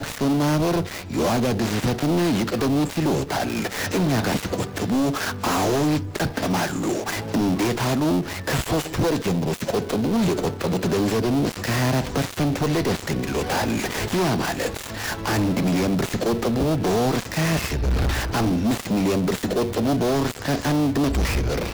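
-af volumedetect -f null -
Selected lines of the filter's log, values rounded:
mean_volume: -22.4 dB
max_volume: -17.5 dB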